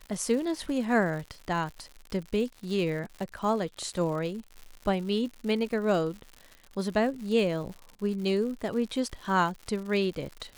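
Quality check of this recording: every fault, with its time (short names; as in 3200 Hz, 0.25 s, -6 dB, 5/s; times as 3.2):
crackle 160/s -37 dBFS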